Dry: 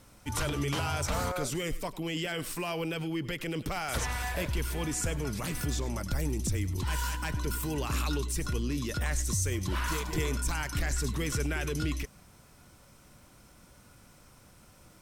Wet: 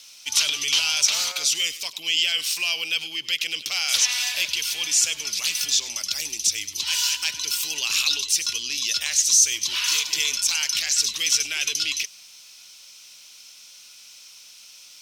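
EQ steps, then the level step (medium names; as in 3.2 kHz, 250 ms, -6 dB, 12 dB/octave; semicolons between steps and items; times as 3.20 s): high-pass 1.4 kHz 6 dB/octave; treble shelf 2.2 kHz +11.5 dB; high-order bell 3.9 kHz +13.5 dB; -2.0 dB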